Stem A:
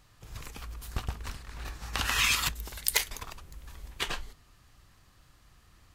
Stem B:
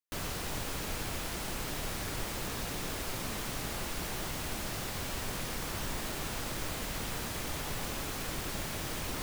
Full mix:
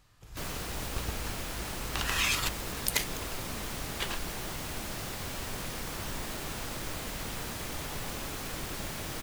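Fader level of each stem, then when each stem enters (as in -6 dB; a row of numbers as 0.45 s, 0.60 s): -3.0 dB, -0.5 dB; 0.00 s, 0.25 s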